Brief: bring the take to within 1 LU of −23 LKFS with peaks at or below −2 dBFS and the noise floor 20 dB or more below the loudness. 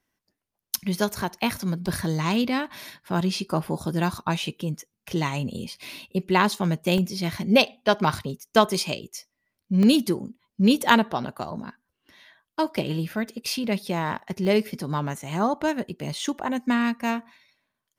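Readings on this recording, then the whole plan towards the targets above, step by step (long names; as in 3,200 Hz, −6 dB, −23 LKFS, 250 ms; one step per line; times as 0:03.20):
number of dropouts 4; longest dropout 1.6 ms; integrated loudness −25.0 LKFS; sample peak −2.0 dBFS; target loudness −23.0 LKFS
→ repair the gap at 0:01.87/0:06.98/0:09.83/0:14.45, 1.6 ms
level +2 dB
brickwall limiter −2 dBFS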